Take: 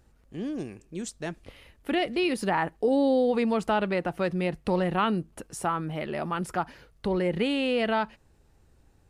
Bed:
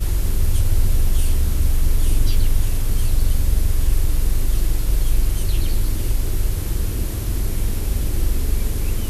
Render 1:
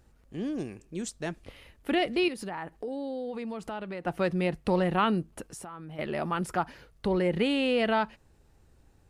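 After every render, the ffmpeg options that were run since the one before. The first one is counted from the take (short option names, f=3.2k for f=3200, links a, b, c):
-filter_complex "[0:a]asettb=1/sr,asplit=3[a][b][c];[a]atrim=end=2.284[d];[b]atrim=start=2.28:end=4.07,asetpts=PTS-STARTPTS,afade=t=in:d=0.004:c=qsin,afade=t=out:st=1.786:d=0.004:c=qsin,acompressor=threshold=-38dB:ratio=2.5:attack=3.2:release=140:knee=1:detection=peak[e];[c]atrim=start=4.066[f];[d][e]acrossfade=d=0.004:c1=hsin:c2=qsin[g];[g][f]acrossfade=d=0.004:c1=qsin:c2=hsin,asettb=1/sr,asplit=3[h][i][j];[h]atrim=end=5.504[k];[i]atrim=start=5.5:end=5.99,asetpts=PTS-STARTPTS,afade=t=in:d=0.004:c=qsin,afade=t=out:st=0.486:d=0.004:c=qsin,acompressor=threshold=-39dB:ratio=8:attack=3.2:release=140:knee=1:detection=peak[l];[j]atrim=start=5.986[m];[k][l]acrossfade=d=0.004:c1=hsin:c2=qsin[n];[n][m]acrossfade=d=0.004:c1=qsin:c2=hsin"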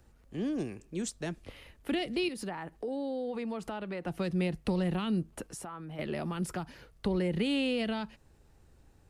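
-filter_complex "[0:a]acrossover=split=240|3000[a][b][c];[b]acompressor=threshold=-29dB:ratio=6[d];[a][d][c]amix=inputs=3:normalize=0,acrossover=split=400|2800[e][f][g];[f]alimiter=level_in=7.5dB:limit=-24dB:level=0:latency=1:release=269,volume=-7.5dB[h];[e][h][g]amix=inputs=3:normalize=0"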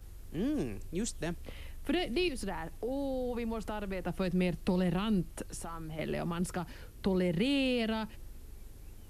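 -filter_complex "[1:a]volume=-29dB[a];[0:a][a]amix=inputs=2:normalize=0"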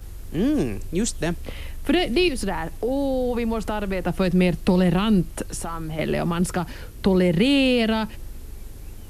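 -af "volume=11.5dB"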